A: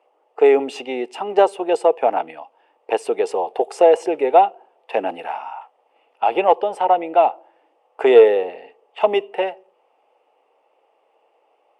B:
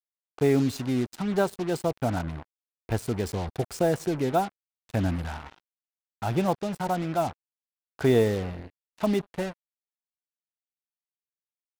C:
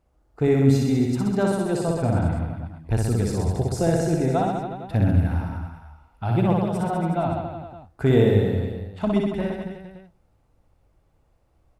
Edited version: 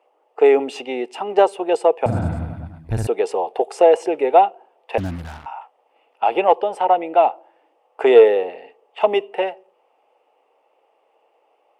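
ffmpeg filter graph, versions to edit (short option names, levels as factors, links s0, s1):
-filter_complex "[0:a]asplit=3[s0][s1][s2];[s0]atrim=end=2.062[s3];[2:a]atrim=start=2.058:end=3.072[s4];[s1]atrim=start=3.068:end=4.982[s5];[1:a]atrim=start=4.978:end=5.462[s6];[s2]atrim=start=5.458[s7];[s3][s4]acrossfade=d=0.004:c1=hsin:c2=hsin[s8];[s8][s5]acrossfade=d=0.004:c1=hsin:c2=hsin[s9];[s9][s6]acrossfade=d=0.004:c1=hsin:c2=hsin[s10];[s10][s7]acrossfade=d=0.004:c1=hsin:c2=hsin"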